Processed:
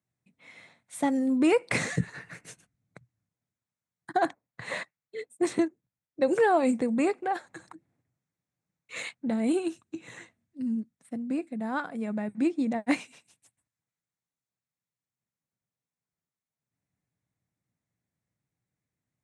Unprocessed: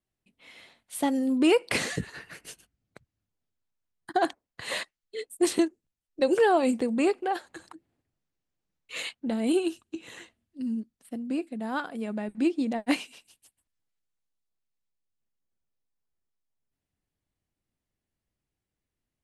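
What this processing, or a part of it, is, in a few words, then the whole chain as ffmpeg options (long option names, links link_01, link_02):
car door speaker: -filter_complex "[0:a]asettb=1/sr,asplit=3[link_01][link_02][link_03];[link_01]atrim=end=4.254[link_04];[link_02]atrim=start=4.25:end=6.28,asetpts=PTS-STARTPTS,afade=type=in:duration=0.004:curve=qsin,afade=type=out:start_time=2.026:duration=0.004:curve=qsin,highshelf=frequency=4500:gain=-8[link_05];[link_03]atrim=start=6.276[link_06];[link_04][link_05]acrossfade=duration=0.004:curve1=hsin:curve2=qsin[link_07];[link_07][link_06]acrossfade=duration=0.004:curve1=qsin:curve2=hsin,highpass=95,equalizer=frequency=120:width_type=q:width=4:gain=9,equalizer=frequency=170:width_type=q:width=4:gain=6,equalizer=frequency=380:width_type=q:width=4:gain=-4,equalizer=frequency=2100:width_type=q:width=4:gain=3,equalizer=frequency=3000:width_type=q:width=4:gain=-10,equalizer=frequency=4700:width_type=q:width=4:gain=-8,lowpass=frequency=9100:width=0.5412,lowpass=frequency=9100:width=1.3066"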